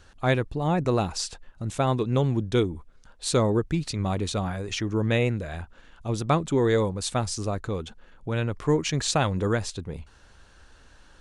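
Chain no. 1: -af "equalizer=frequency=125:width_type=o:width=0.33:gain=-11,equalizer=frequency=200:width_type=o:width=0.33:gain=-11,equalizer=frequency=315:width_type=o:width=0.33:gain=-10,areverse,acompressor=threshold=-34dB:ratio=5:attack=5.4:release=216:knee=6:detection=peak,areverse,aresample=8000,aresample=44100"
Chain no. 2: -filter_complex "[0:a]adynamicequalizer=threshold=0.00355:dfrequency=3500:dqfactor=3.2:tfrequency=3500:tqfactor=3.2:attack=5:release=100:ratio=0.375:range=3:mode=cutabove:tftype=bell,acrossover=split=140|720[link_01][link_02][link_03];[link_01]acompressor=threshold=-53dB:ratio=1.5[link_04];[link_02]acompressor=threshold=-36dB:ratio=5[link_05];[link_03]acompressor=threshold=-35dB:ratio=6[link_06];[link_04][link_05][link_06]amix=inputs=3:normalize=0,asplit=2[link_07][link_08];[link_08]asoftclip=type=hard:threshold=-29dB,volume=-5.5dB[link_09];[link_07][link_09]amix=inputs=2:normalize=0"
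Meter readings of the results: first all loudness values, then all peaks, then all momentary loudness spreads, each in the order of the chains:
−39.5, −32.5 LKFS; −23.5, −14.0 dBFS; 15, 13 LU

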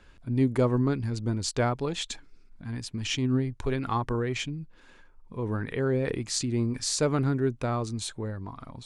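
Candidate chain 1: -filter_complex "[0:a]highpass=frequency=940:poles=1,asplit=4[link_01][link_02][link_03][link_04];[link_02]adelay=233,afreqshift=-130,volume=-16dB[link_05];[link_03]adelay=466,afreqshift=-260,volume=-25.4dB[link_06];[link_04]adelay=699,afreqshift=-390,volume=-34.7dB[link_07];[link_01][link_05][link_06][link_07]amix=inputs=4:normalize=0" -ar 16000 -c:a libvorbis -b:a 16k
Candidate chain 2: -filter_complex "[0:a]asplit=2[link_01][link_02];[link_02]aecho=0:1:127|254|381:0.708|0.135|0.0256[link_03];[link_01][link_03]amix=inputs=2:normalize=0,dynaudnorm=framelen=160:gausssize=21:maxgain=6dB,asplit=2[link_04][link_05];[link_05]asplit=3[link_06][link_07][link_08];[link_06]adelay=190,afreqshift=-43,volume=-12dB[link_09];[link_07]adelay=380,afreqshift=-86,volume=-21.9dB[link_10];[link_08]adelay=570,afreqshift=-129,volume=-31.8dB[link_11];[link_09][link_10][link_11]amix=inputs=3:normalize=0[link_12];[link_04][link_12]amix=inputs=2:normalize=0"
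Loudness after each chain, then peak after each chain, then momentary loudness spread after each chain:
−34.0, −22.5 LKFS; −14.5, −6.5 dBFS; 15, 13 LU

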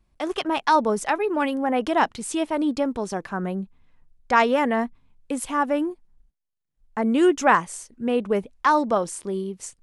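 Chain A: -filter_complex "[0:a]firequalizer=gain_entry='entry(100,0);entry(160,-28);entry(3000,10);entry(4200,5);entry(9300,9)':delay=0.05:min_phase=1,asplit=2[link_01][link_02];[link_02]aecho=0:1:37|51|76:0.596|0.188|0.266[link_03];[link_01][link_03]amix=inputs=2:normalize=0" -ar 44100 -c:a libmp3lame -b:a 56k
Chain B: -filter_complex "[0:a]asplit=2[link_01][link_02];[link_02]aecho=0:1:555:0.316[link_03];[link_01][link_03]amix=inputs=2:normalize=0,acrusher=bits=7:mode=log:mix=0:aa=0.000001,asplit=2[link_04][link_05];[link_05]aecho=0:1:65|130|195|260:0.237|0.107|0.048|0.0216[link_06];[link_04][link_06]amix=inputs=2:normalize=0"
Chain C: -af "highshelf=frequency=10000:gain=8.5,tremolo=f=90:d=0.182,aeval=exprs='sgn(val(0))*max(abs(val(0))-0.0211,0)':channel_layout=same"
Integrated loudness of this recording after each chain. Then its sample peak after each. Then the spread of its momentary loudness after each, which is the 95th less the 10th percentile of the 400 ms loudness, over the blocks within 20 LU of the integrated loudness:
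−28.0, −23.0, −25.5 LKFS; −7.5, −4.0, −5.5 dBFS; 13, 13, 14 LU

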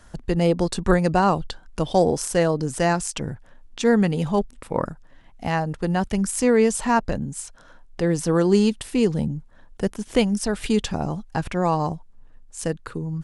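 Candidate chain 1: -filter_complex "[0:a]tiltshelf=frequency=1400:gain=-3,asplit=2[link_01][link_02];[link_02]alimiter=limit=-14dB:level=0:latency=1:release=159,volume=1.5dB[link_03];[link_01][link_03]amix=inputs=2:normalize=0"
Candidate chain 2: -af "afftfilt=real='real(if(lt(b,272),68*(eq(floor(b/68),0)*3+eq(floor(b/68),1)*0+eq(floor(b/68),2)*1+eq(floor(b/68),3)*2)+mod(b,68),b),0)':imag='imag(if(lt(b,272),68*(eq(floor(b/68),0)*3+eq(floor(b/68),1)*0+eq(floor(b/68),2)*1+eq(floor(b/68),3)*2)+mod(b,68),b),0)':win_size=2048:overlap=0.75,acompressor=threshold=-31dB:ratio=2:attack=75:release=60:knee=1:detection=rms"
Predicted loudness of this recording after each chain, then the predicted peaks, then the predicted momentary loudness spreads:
−19.0, −25.5 LKFS; −2.5, −12.0 dBFS; 11, 11 LU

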